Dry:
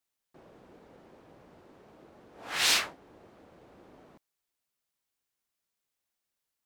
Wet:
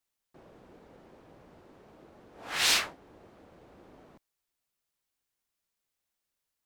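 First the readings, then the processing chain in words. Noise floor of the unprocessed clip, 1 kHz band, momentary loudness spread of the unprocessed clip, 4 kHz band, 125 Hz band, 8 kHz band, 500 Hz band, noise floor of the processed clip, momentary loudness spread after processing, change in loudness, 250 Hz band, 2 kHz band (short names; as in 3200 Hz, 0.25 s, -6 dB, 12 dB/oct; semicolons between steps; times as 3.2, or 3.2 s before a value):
under -85 dBFS, 0.0 dB, 14 LU, 0.0 dB, +1.5 dB, 0.0 dB, 0.0 dB, under -85 dBFS, 14 LU, 0.0 dB, +0.5 dB, 0.0 dB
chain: low shelf 63 Hz +6.5 dB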